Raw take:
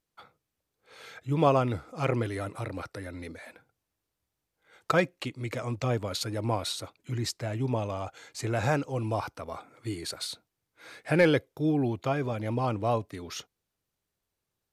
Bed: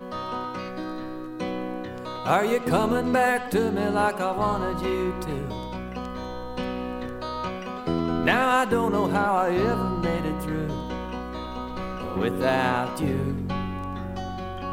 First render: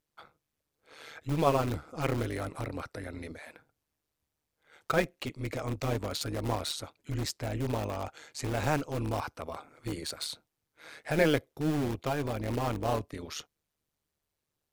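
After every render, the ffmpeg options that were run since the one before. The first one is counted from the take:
-filter_complex "[0:a]asplit=2[s0][s1];[s1]aeval=exprs='(mod(20*val(0)+1,2)-1)/20':c=same,volume=0.316[s2];[s0][s2]amix=inputs=2:normalize=0,tremolo=f=150:d=0.75"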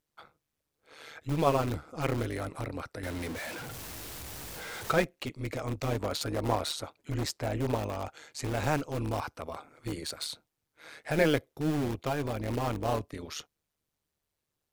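-filter_complex "[0:a]asettb=1/sr,asplit=3[s0][s1][s2];[s0]atrim=end=3.034[s3];[s1]atrim=start=3.03:end=5.04,asetpts=PTS-STARTPTS,afade=t=in:d=0.004:c=qsin,afade=t=out:st=2.006:d=0.004:c=qsin,aeval=exprs='val(0)+0.5*0.0178*sgn(val(0))':c=same[s4];[s2]atrim=start=5.036[s5];[s3][s4]acrossfade=d=0.004:c1=hsin:c2=qsin[s6];[s6][s5]acrossfade=d=0.004:c1=qsin:c2=hsin,asettb=1/sr,asplit=3[s7][s8][s9];[s7]atrim=end=5.994[s10];[s8]atrim=start=5.99:end=7.76,asetpts=PTS-STARTPTS,afade=t=in:d=0.004:c=qsin,afade=t=out:st=1.766:d=0.004:c=qsin,equalizer=f=740:t=o:w=2.4:g=4.5[s11];[s9]atrim=start=7.756[s12];[s10][s11]acrossfade=d=0.004:c1=hsin:c2=qsin[s13];[s13][s12]acrossfade=d=0.004:c1=qsin:c2=hsin"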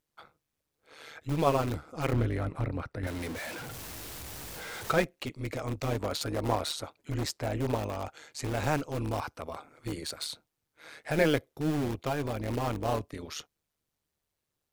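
-filter_complex "[0:a]asettb=1/sr,asplit=3[s0][s1][s2];[s0]atrim=end=2.134[s3];[s1]atrim=start=2.13:end=3.07,asetpts=PTS-STARTPTS,afade=t=in:d=0.004:c=qsin,afade=t=out:st=0.936:d=0.004:c=qsin,bass=f=250:g=7,treble=f=4000:g=-11[s4];[s2]atrim=start=3.066[s5];[s3][s4]acrossfade=d=0.004:c1=hsin:c2=qsin[s6];[s6][s5]acrossfade=d=0.004:c1=qsin:c2=hsin"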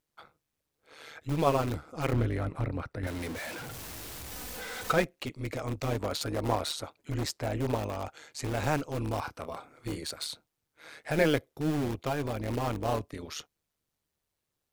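-filter_complex "[0:a]asettb=1/sr,asplit=3[s0][s1][s2];[s0]atrim=end=4.314[s3];[s1]atrim=start=4.31:end=4.93,asetpts=PTS-STARTPTS,afade=t=in:d=0.004:c=qsin,afade=t=out:st=0.616:d=0.004:c=qsin,aecho=1:1:4:0.65,atrim=end_sample=27342[s4];[s2]atrim=start=4.926[s5];[s3][s4]acrossfade=d=0.004:c1=hsin:c2=qsin[s6];[s6][s5]acrossfade=d=0.004:c1=qsin:c2=hsin,asettb=1/sr,asplit=3[s7][s8][s9];[s7]atrim=end=9.224[s10];[s8]atrim=start=9.22:end=9.98,asetpts=PTS-STARTPTS,afade=t=in:d=0.004:c=qsin,afade=t=out:st=0.756:d=0.004:c=qsin,asplit=2[s11][s12];[s12]adelay=30,volume=0.355[s13];[s11][s13]amix=inputs=2:normalize=0,atrim=end_sample=33516[s14];[s9]atrim=start=9.976[s15];[s10][s14]acrossfade=d=0.004:c1=hsin:c2=qsin[s16];[s16][s15]acrossfade=d=0.004:c1=qsin:c2=hsin"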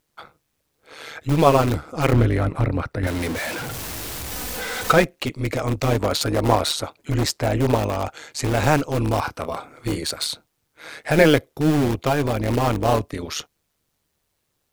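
-af "volume=3.55,alimiter=limit=0.794:level=0:latency=1"

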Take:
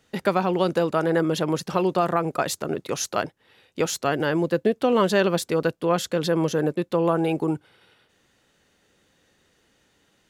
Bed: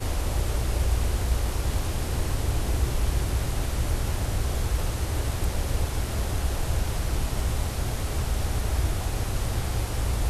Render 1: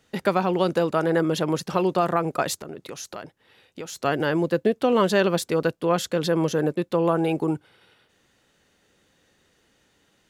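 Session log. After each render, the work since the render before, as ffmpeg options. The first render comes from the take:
-filter_complex "[0:a]asplit=3[s0][s1][s2];[s0]afade=t=out:st=2.56:d=0.02[s3];[s1]acompressor=threshold=0.0178:ratio=3:attack=3.2:release=140:knee=1:detection=peak,afade=t=in:st=2.56:d=0.02,afade=t=out:st=3.96:d=0.02[s4];[s2]afade=t=in:st=3.96:d=0.02[s5];[s3][s4][s5]amix=inputs=3:normalize=0"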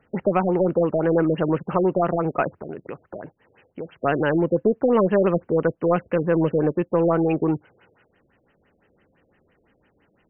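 -filter_complex "[0:a]asplit=2[s0][s1];[s1]asoftclip=type=hard:threshold=0.0841,volume=0.473[s2];[s0][s2]amix=inputs=2:normalize=0,afftfilt=real='re*lt(b*sr/1024,650*pow(3200/650,0.5+0.5*sin(2*PI*5.9*pts/sr)))':imag='im*lt(b*sr/1024,650*pow(3200/650,0.5+0.5*sin(2*PI*5.9*pts/sr)))':win_size=1024:overlap=0.75"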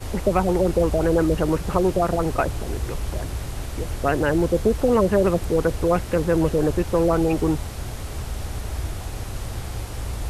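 -filter_complex "[1:a]volume=0.708[s0];[0:a][s0]amix=inputs=2:normalize=0"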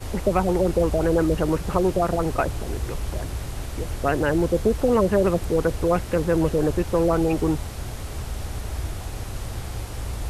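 -af "volume=0.891"

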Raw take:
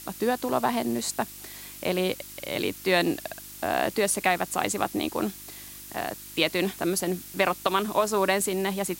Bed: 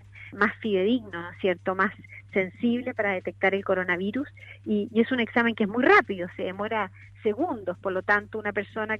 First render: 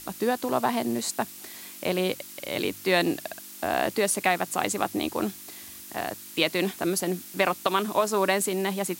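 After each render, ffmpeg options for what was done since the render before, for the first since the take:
-af "bandreject=f=50:t=h:w=4,bandreject=f=100:t=h:w=4,bandreject=f=150:t=h:w=4"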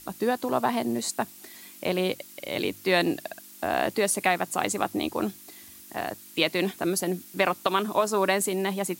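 -af "afftdn=nr=6:nf=-44"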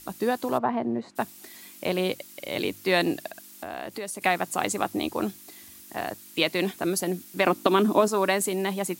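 -filter_complex "[0:a]asplit=3[s0][s1][s2];[s0]afade=t=out:st=0.57:d=0.02[s3];[s1]lowpass=1500,afade=t=in:st=0.57:d=0.02,afade=t=out:st=1.15:d=0.02[s4];[s2]afade=t=in:st=1.15:d=0.02[s5];[s3][s4][s5]amix=inputs=3:normalize=0,asettb=1/sr,asplit=3[s6][s7][s8];[s6]atrim=end=3.284[s9];[s7]atrim=start=3.28:end=4.22,asetpts=PTS-STARTPTS,afade=t=in:d=0.004:c=qsin,afade=t=out:st=0.936:d=0.004:c=qsin,acompressor=threshold=0.0178:ratio=2.5:attack=3.2:release=140:knee=1:detection=peak[s10];[s8]atrim=start=4.216[s11];[s9][s10]acrossfade=d=0.004:c1=hsin:c2=qsin[s12];[s12][s11]acrossfade=d=0.004:c1=qsin:c2=hsin,asettb=1/sr,asplit=3[s13][s14][s15];[s13]atrim=end=7.464[s16];[s14]atrim=start=7.46:end=8.08,asetpts=PTS-STARTPTS,afade=t=in:d=0.004:c=qsin,afade=t=out:st=0.616:d=0.004:c=qsin,equalizer=f=280:w=1.2:g=13.5[s17];[s15]atrim=start=8.076[s18];[s16][s17]acrossfade=d=0.004:c1=hsin:c2=qsin[s19];[s19][s18]acrossfade=d=0.004:c1=qsin:c2=hsin"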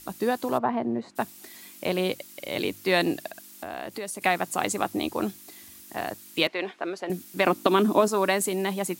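-filter_complex "[0:a]asettb=1/sr,asplit=3[s0][s1][s2];[s0]atrim=end=6.474[s3];[s1]atrim=start=6.47:end=7.1,asetpts=PTS-STARTPTS,afade=t=in:d=0.004:c=qsin,afade=t=out:st=0.626:d=0.004:c=qsin,highpass=450,lowpass=2700[s4];[s2]atrim=start=7.096[s5];[s3][s4]acrossfade=d=0.004:c1=hsin:c2=qsin[s6];[s6][s5]acrossfade=d=0.004:c1=qsin:c2=hsin"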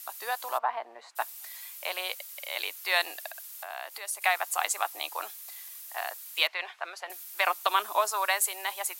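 -af "highpass=f=760:w=0.5412,highpass=f=760:w=1.3066,equalizer=f=13000:w=1.5:g=6.5"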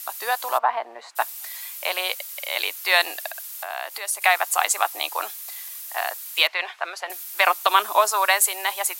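-af "volume=2.51,alimiter=limit=0.708:level=0:latency=1"

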